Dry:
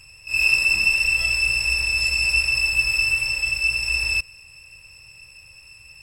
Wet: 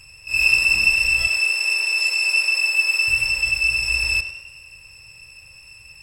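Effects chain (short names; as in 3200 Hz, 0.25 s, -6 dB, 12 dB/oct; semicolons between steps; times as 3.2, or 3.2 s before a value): 1.27–3.08 elliptic high-pass 390 Hz, stop band 40 dB; tape echo 0.1 s, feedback 58%, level -10 dB, low-pass 5100 Hz; gain +1.5 dB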